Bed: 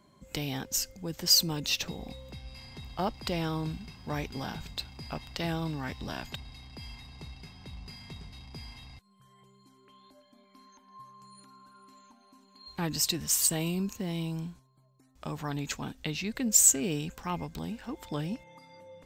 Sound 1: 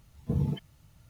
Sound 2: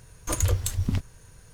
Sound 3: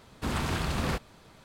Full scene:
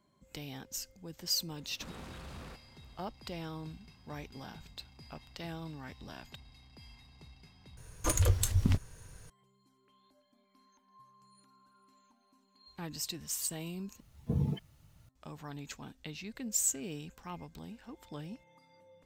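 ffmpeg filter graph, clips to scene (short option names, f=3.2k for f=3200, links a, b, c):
-filter_complex "[0:a]volume=-10dB[a];[3:a]alimiter=level_in=4.5dB:limit=-24dB:level=0:latency=1:release=18,volume=-4.5dB[b];[2:a]alimiter=limit=-13dB:level=0:latency=1:release=158[c];[a]asplit=3[d][e][f];[d]atrim=end=7.774[g];[c]atrim=end=1.53,asetpts=PTS-STARTPTS,volume=-1.5dB[h];[e]atrim=start=9.296:end=14.004[i];[1:a]atrim=end=1.09,asetpts=PTS-STARTPTS,volume=-3dB[j];[f]atrim=start=15.086[k];[b]atrim=end=1.44,asetpts=PTS-STARTPTS,volume=-11.5dB,afade=t=in:d=0.004:c=hsin,afade=t=out:st=1.436:d=0.004:c=hsin,adelay=1580[l];[g][h]acrossfade=d=0.004:c1=hsin:c2=hsin[m];[m][i]acrossfade=d=0.004:c1=hsin:c2=hsin[n];[n][j]acrossfade=d=0.004:c1=hsin:c2=hsin[o];[o][k]acrossfade=d=0.004:c1=hsin:c2=hsin[p];[p][l]amix=inputs=2:normalize=0"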